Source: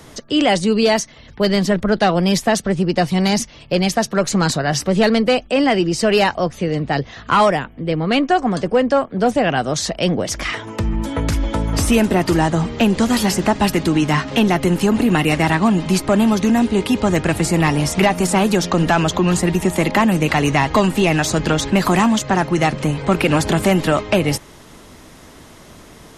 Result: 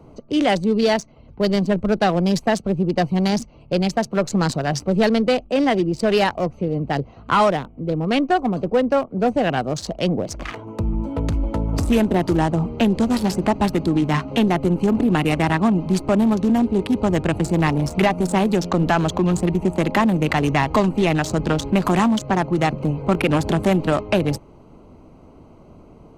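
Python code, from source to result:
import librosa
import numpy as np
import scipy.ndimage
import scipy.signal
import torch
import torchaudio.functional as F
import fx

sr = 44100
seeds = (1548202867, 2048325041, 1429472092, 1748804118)

y = fx.wiener(x, sr, points=25)
y = y * librosa.db_to_amplitude(-2.0)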